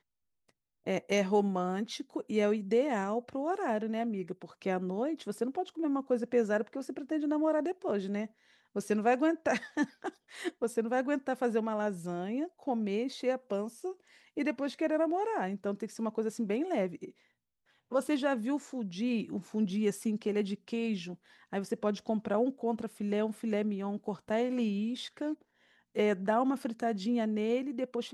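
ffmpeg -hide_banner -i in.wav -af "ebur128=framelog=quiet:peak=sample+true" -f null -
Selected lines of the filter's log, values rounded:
Integrated loudness:
  I:         -32.9 LUFS
  Threshold: -43.1 LUFS
Loudness range:
  LRA:         2.4 LU
  Threshold: -53.4 LUFS
  LRA low:   -34.4 LUFS
  LRA high:  -32.0 LUFS
Sample peak:
  Peak:      -16.1 dBFS
True peak:
  Peak:      -16.1 dBFS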